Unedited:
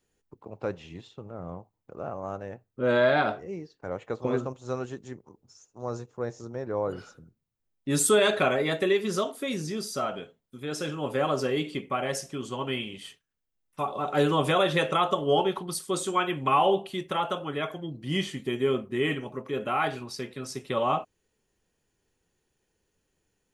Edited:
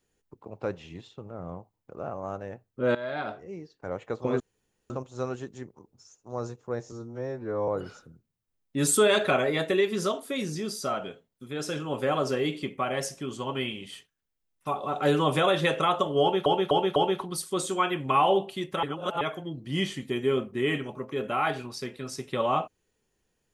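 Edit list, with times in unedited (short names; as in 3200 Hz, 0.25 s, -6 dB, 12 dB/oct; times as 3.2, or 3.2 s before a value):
2.95–3.87 fade in, from -17.5 dB
4.4 insert room tone 0.50 s
6.42–6.8 stretch 2×
15.33–15.58 loop, 4 plays
17.2–17.58 reverse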